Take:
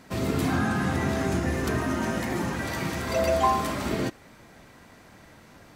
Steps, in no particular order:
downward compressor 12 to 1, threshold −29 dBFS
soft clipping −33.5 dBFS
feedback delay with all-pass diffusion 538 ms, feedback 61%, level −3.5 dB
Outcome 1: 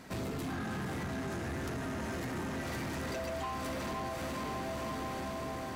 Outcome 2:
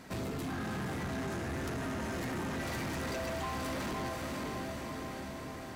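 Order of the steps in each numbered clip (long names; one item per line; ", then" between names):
feedback delay with all-pass diffusion, then downward compressor, then soft clipping
downward compressor, then feedback delay with all-pass diffusion, then soft clipping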